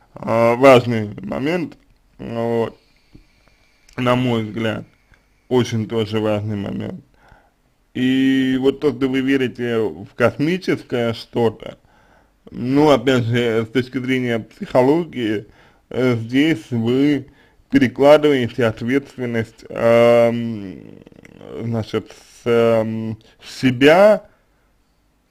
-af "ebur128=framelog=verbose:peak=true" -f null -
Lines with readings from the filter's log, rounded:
Integrated loudness:
  I:         -17.7 LUFS
  Threshold: -29.0 LUFS
Loudness range:
  LRA:         6.6 LU
  Threshold: -39.3 LUFS
  LRA low:   -23.4 LUFS
  LRA high:  -16.8 LUFS
True peak:
  Peak:       -1.2 dBFS